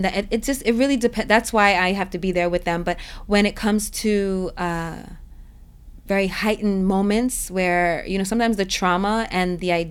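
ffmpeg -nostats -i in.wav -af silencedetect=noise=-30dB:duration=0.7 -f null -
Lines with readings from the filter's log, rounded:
silence_start: 5.14
silence_end: 6.09 | silence_duration: 0.95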